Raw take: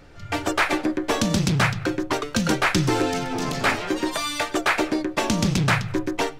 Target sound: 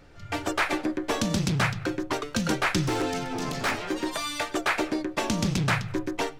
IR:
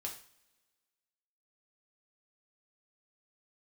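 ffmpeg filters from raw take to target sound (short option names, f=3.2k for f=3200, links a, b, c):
-filter_complex "[0:a]asettb=1/sr,asplit=3[a][b][c];[a]atrim=end=2.814[d];[b]atrim=start=2.81:end=4.08,asetpts=PTS-STARTPTS,afade=t=in:d=0.004:c=qsin,afade=t=out:st=1.266:d=0.004:c=qsin,aeval=exprs='0.168*(abs(mod(val(0)/0.168+3,4)-2)-1)':c=same[e];[c]atrim=start=4.076[f];[d][e]acrossfade=d=0.004:c1=hsin:c2=qsin[g];[g][f]acrossfade=d=0.004:c1=qsin:c2=hsin,volume=-4.5dB"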